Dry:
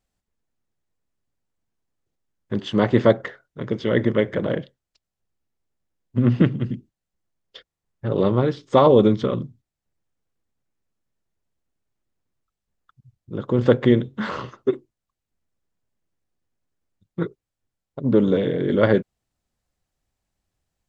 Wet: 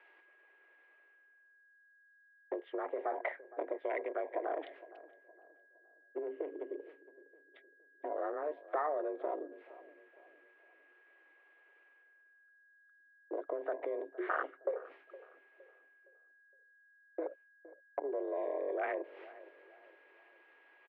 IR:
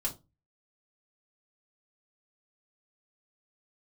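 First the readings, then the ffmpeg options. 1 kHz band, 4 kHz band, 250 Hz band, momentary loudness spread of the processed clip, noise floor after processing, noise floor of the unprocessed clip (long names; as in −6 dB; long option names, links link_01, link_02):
−11.5 dB, below −25 dB, −26.0 dB, 19 LU, −67 dBFS, −85 dBFS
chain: -filter_complex "[0:a]afwtdn=0.0501,agate=range=-33dB:threshold=-43dB:ratio=3:detection=peak,areverse,acompressor=mode=upward:threshold=-17dB:ratio=2.5,areverse,alimiter=limit=-13dB:level=0:latency=1:release=11,acompressor=threshold=-34dB:ratio=10,aeval=exprs='val(0)+0.000282*sin(2*PI*1500*n/s)':channel_layout=same,crystalizer=i=9.5:c=0,highpass=frequency=210:width_type=q:width=0.5412,highpass=frequency=210:width_type=q:width=1.307,lowpass=frequency=2300:width_type=q:width=0.5176,lowpass=frequency=2300:width_type=q:width=0.7071,lowpass=frequency=2300:width_type=q:width=1.932,afreqshift=150,asplit=2[link_01][link_02];[link_02]adelay=464,lowpass=frequency=1200:poles=1,volume=-17dB,asplit=2[link_03][link_04];[link_04]adelay=464,lowpass=frequency=1200:poles=1,volume=0.43,asplit=2[link_05][link_06];[link_06]adelay=464,lowpass=frequency=1200:poles=1,volume=0.43,asplit=2[link_07][link_08];[link_08]adelay=464,lowpass=frequency=1200:poles=1,volume=0.43[link_09];[link_03][link_05][link_07][link_09]amix=inputs=4:normalize=0[link_10];[link_01][link_10]amix=inputs=2:normalize=0"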